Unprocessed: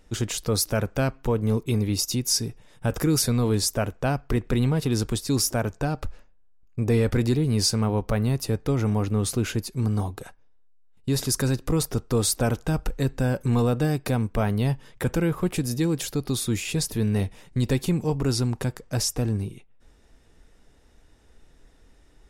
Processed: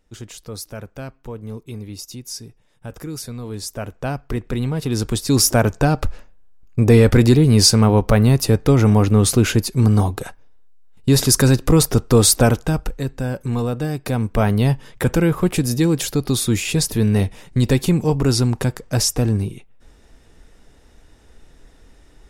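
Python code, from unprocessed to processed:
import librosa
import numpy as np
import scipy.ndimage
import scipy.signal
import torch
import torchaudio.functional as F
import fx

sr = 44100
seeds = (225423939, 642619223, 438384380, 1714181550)

y = fx.gain(x, sr, db=fx.line((3.43, -8.5), (4.03, 0.0), (4.7, 0.0), (5.55, 10.0), (12.41, 10.0), (13.04, 0.0), (13.92, 0.0), (14.42, 7.0)))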